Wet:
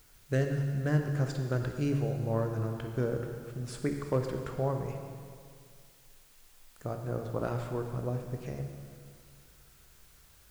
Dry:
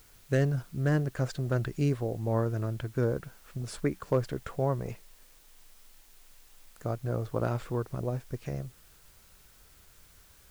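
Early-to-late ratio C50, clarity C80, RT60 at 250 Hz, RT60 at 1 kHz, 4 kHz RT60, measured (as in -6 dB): 5.0 dB, 6.0 dB, 2.1 s, 2.1 s, 2.1 s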